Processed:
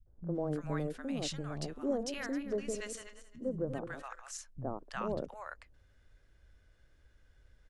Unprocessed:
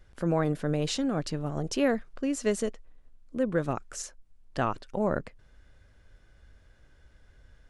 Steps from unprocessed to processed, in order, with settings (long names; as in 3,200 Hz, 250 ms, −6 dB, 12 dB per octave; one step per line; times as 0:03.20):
0:01.68–0:03.96: feedback delay that plays each chunk backwards 133 ms, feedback 41%, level −9 dB
three-band delay without the direct sound lows, mids, highs 60/350 ms, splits 190/850 Hz
level −6.5 dB